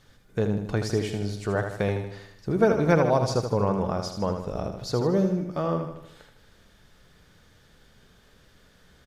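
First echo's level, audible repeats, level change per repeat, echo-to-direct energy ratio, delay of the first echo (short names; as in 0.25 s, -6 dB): -7.0 dB, 5, -5.5 dB, -5.5 dB, 78 ms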